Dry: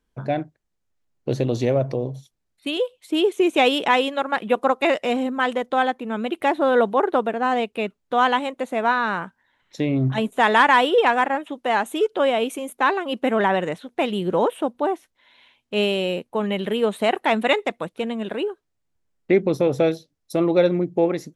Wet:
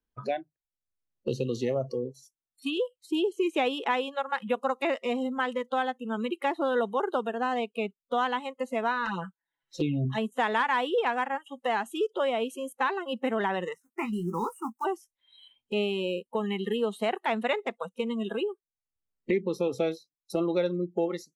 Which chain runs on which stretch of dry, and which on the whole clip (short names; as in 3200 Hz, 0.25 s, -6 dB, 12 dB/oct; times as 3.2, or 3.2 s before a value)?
9.05–10.05 envelope flanger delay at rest 9.8 ms, full sweep at -21 dBFS + comb 6 ms, depth 90%
13.74–14.85 G.711 law mismatch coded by A + fixed phaser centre 1400 Hz, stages 4 + doubler 18 ms -8.5 dB
whole clip: spectral noise reduction 26 dB; high shelf 8400 Hz -5.5 dB; three-band squash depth 70%; gain -8 dB